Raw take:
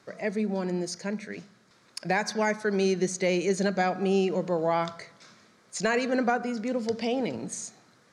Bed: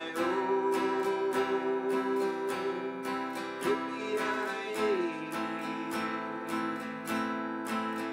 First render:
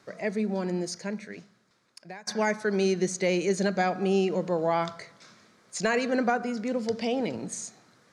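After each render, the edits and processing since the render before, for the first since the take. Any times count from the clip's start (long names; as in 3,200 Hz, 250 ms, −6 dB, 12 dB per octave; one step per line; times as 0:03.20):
0:00.88–0:02.27: fade out, to −23.5 dB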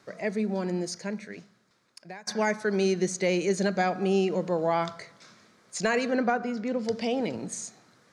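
0:06.11–0:06.85: high-frequency loss of the air 80 metres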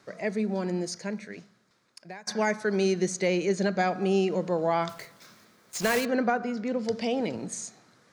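0:03.28–0:03.79: high-frequency loss of the air 52 metres
0:04.89–0:06.06: one scale factor per block 3 bits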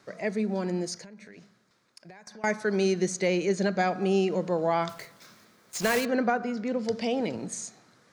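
0:01.03–0:02.44: downward compressor 12 to 1, threshold −43 dBFS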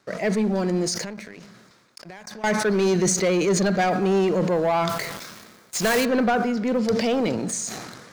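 leveller curve on the samples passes 2
level that may fall only so fast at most 39 dB per second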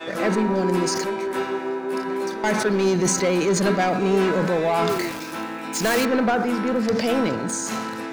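mix in bed +4 dB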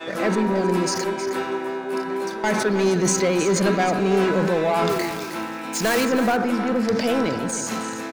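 single-tap delay 315 ms −11 dB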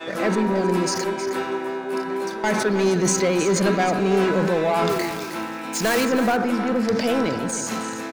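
no processing that can be heard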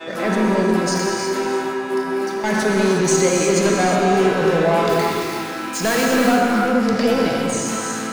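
echo through a band-pass that steps 120 ms, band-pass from 1,200 Hz, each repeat 1.4 octaves, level −5 dB
reverb whose tail is shaped and stops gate 390 ms flat, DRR −0.5 dB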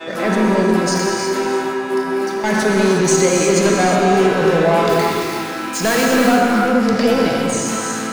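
level +2.5 dB
brickwall limiter −3 dBFS, peak gain reduction 1 dB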